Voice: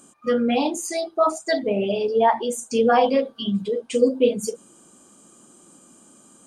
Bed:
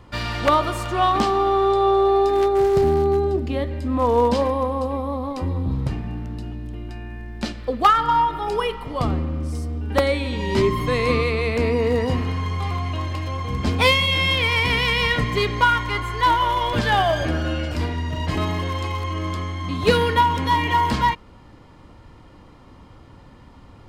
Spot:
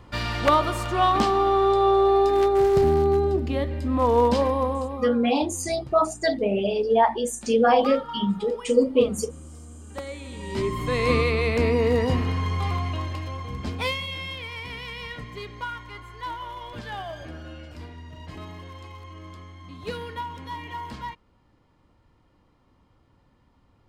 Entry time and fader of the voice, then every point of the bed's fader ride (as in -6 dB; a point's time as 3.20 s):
4.75 s, -1.0 dB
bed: 4.71 s -1.5 dB
5.30 s -16.5 dB
10.02 s -16.5 dB
11.12 s -1 dB
12.73 s -1 dB
14.48 s -16 dB